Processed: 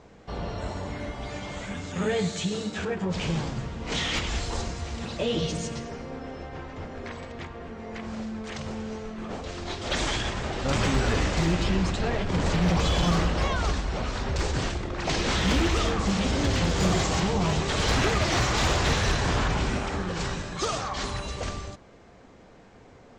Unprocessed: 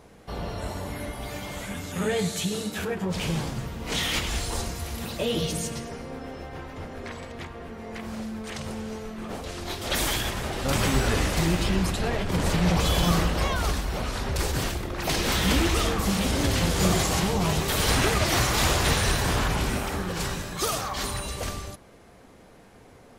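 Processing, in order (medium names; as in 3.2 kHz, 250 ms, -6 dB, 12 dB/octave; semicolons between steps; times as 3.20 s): steep low-pass 7.8 kHz 48 dB/octave; treble shelf 3.7 kHz -3.5 dB; hard clipper -17 dBFS, distortion -21 dB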